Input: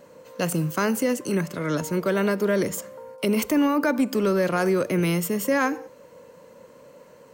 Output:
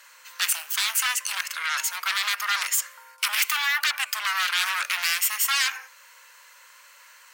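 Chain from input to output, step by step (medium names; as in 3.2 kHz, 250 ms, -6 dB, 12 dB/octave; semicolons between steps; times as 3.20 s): dynamic bell 2.5 kHz, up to +6 dB, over -44 dBFS, Q 2.1; sine folder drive 12 dB, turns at -10.5 dBFS; inverse Chebyshev high-pass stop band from 230 Hz, stop band 80 dB; trim -5 dB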